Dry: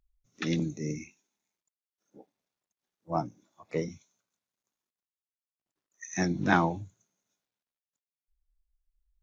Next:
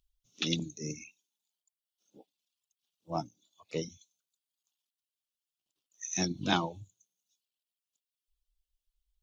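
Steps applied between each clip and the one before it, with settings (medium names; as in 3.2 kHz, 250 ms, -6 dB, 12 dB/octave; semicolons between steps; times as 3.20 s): reverb removal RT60 0.93 s; resonant high shelf 2.4 kHz +8 dB, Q 3; trim -3.5 dB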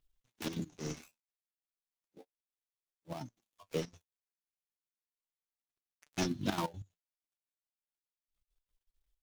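dead-time distortion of 0.17 ms; flange 0.33 Hz, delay 6.7 ms, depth 8.2 ms, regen +42%; trance gate "xxxx.x.x.xx" 187 bpm -12 dB; trim +4.5 dB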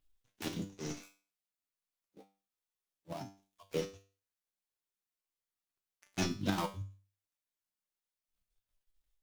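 feedback comb 98 Hz, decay 0.37 s, harmonics all, mix 80%; trim +8.5 dB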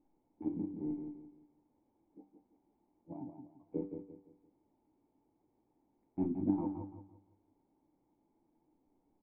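in parallel at -11 dB: word length cut 8-bit, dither triangular; on the sum: cascade formant filter u; feedback delay 171 ms, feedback 33%, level -7 dB; trim +5.5 dB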